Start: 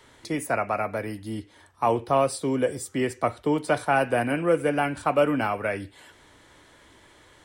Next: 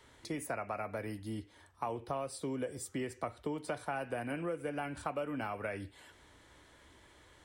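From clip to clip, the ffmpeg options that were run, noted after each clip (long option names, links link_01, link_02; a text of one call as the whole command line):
ffmpeg -i in.wav -af "equalizer=frequency=62:width_type=o:width=0.86:gain=7,acompressor=threshold=-27dB:ratio=6,volume=-7dB" out.wav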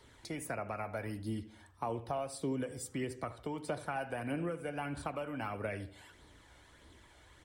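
ffmpeg -i in.wav -filter_complex "[0:a]flanger=delay=0.2:depth=1.2:regen=46:speed=1.6:shape=sinusoidal,asplit=2[link_01][link_02];[link_02]adelay=77,lowpass=frequency=1600:poles=1,volume=-14dB,asplit=2[link_03][link_04];[link_04]adelay=77,lowpass=frequency=1600:poles=1,volume=0.46,asplit=2[link_05][link_06];[link_06]adelay=77,lowpass=frequency=1600:poles=1,volume=0.46,asplit=2[link_07][link_08];[link_08]adelay=77,lowpass=frequency=1600:poles=1,volume=0.46[link_09];[link_01][link_03][link_05][link_07][link_09]amix=inputs=5:normalize=0,volume=4dB" out.wav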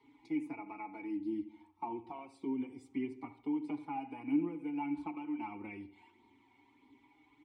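ffmpeg -i in.wav -filter_complex "[0:a]asplit=3[link_01][link_02][link_03];[link_01]bandpass=frequency=300:width_type=q:width=8,volume=0dB[link_04];[link_02]bandpass=frequency=870:width_type=q:width=8,volume=-6dB[link_05];[link_03]bandpass=frequency=2240:width_type=q:width=8,volume=-9dB[link_06];[link_04][link_05][link_06]amix=inputs=3:normalize=0,asplit=2[link_07][link_08];[link_08]adelay=4.5,afreqshift=0.27[link_09];[link_07][link_09]amix=inputs=2:normalize=1,volume=11.5dB" out.wav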